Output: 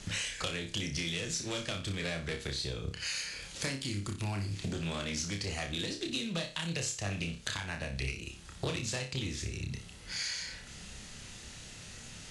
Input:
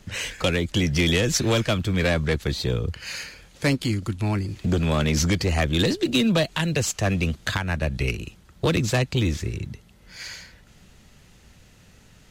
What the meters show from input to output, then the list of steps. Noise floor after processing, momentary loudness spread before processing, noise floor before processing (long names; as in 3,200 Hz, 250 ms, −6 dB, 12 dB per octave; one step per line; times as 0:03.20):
−49 dBFS, 13 LU, −53 dBFS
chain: Butterworth low-pass 11,000 Hz 96 dB per octave
high-shelf EQ 2,300 Hz +11 dB
downward compressor 8 to 1, threshold −35 dBFS, peak gain reduction 24 dB
on a send: flutter between parallel walls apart 5.1 metres, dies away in 0.35 s
on the sum: highs frequency-modulated by the lows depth 0.16 ms